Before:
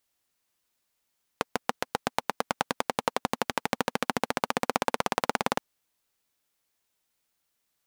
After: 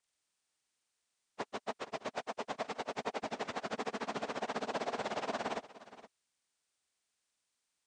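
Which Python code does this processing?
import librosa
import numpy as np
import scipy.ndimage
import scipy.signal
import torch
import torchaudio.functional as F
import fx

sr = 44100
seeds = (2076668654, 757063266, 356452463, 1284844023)

y = fx.partial_stretch(x, sr, pct=82)
y = y + 10.0 ** (-16.5 / 20.0) * np.pad(y, (int(469 * sr / 1000.0), 0))[:len(y)]
y = F.gain(torch.from_numpy(y), -5.5).numpy()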